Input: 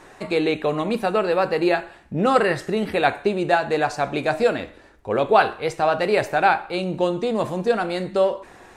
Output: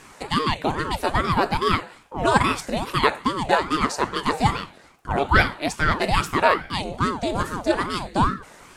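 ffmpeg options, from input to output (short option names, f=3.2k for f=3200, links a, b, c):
-af "bass=f=250:g=-10,treble=f=4k:g=8,aeval=exprs='val(0)*sin(2*PI*460*n/s+460*0.7/2.4*sin(2*PI*2.4*n/s))':c=same,volume=2.5dB"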